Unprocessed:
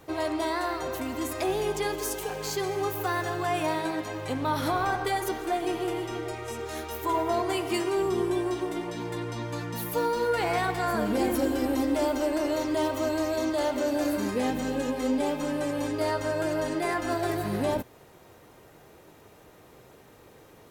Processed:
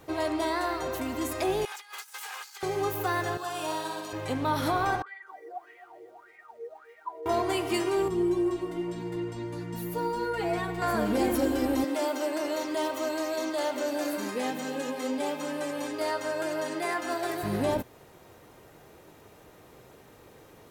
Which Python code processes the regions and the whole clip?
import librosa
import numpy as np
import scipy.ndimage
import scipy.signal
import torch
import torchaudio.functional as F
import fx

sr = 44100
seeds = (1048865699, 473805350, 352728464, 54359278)

y = fx.chain(x, sr, fx.lower_of_two(delay_ms=2.4),
    fx.highpass(hz=990.0, slope=24),
    fx.over_compress(threshold_db=-42.0, ratio=-0.5), at=(1.65, 2.63))
y = fx.chain(y, sr, fx.highpass(hz=1200.0, slope=6),
    fx.peak_eq(hz=2100.0, db=-14.5, octaves=0.45),
    fx.room_flutter(wall_m=9.9, rt60_s=0.92), at=(3.37, 4.13))
y = fx.chain(y, sr, fx.high_shelf(hz=7800.0, db=-5.5),
    fx.wah_lfo(hz=1.7, low_hz=460.0, high_hz=2100.0, q=16.0),
    fx.echo_crushed(ms=260, feedback_pct=35, bits=10, wet_db=-13.0), at=(5.02, 7.26))
y = fx.chain(y, sr, fx.low_shelf(hz=350.0, db=10.0),
    fx.stiff_resonator(f0_hz=82.0, decay_s=0.2, stiffness=0.008), at=(8.08, 10.82))
y = fx.chain(y, sr, fx.highpass(hz=140.0, slope=24),
    fx.low_shelf(hz=400.0, db=-8.0), at=(11.84, 17.43))